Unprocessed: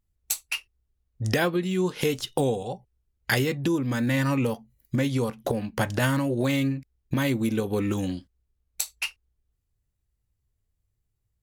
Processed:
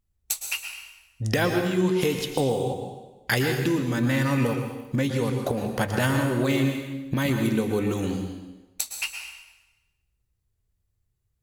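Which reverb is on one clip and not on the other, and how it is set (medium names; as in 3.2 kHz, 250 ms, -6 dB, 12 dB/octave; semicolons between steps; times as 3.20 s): plate-style reverb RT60 1.1 s, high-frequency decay 0.9×, pre-delay 100 ms, DRR 4 dB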